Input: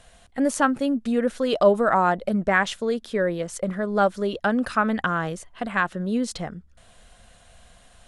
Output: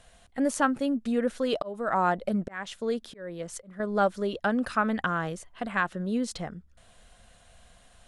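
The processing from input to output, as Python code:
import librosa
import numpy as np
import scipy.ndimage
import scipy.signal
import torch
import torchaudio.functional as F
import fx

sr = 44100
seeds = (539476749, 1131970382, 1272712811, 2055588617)

y = fx.auto_swell(x, sr, attack_ms=420.0, at=(1.43, 3.8))
y = y * 10.0 ** (-4.0 / 20.0)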